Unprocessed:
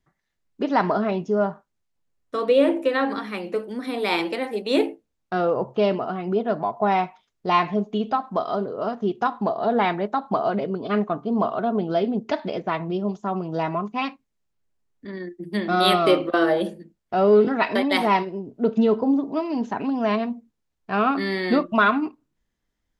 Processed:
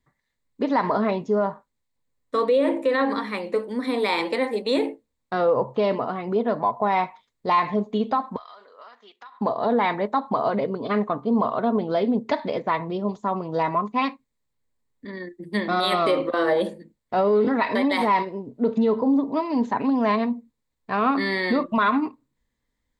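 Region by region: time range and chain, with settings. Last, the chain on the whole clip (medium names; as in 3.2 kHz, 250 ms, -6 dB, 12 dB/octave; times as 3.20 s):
8.36–9.41 s: Chebyshev high-pass 1.8 kHz + compression, threshold -39 dBFS + treble shelf 4.1 kHz -8 dB
whole clip: rippled EQ curve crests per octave 1, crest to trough 7 dB; peak limiter -14 dBFS; dynamic bell 990 Hz, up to +3 dB, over -37 dBFS, Q 0.7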